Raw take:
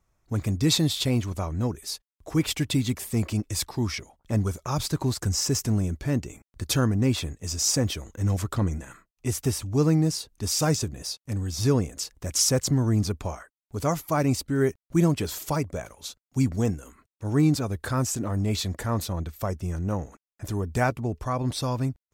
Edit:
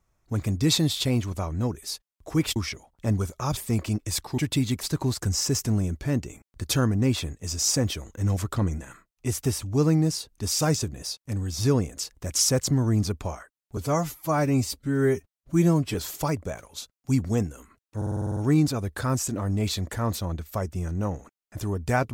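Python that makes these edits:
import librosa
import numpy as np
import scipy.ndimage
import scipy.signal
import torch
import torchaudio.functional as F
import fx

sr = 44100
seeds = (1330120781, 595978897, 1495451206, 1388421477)

y = fx.edit(x, sr, fx.swap(start_s=2.56, length_s=0.45, other_s=3.82, other_length_s=1.01),
    fx.stretch_span(start_s=13.77, length_s=1.45, factor=1.5),
    fx.stutter(start_s=17.24, slice_s=0.05, count=9), tone=tone)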